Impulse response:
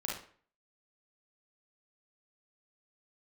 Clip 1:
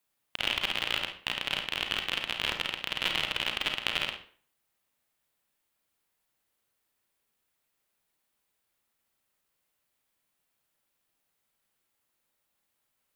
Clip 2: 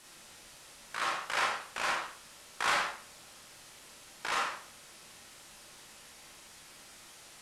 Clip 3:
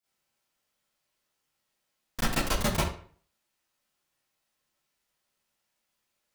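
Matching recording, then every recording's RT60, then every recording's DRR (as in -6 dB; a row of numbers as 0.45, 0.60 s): 2; 0.50, 0.50, 0.50 s; 3.5, -3.5, -13.0 dB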